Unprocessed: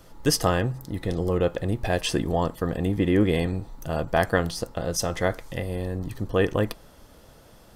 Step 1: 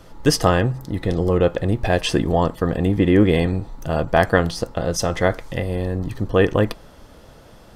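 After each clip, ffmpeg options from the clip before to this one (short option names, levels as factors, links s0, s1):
-af "highshelf=f=7700:g=-10,volume=2"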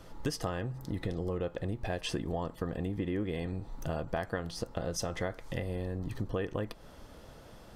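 -af "acompressor=threshold=0.0562:ratio=6,volume=0.501"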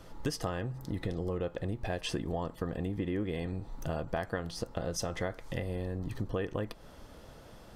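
-af anull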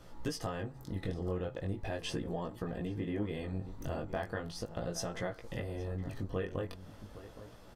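-filter_complex "[0:a]asplit=2[s0][s1];[s1]adelay=816.3,volume=0.224,highshelf=f=4000:g=-18.4[s2];[s0][s2]amix=inputs=2:normalize=0,flanger=delay=16.5:depth=5.3:speed=0.39"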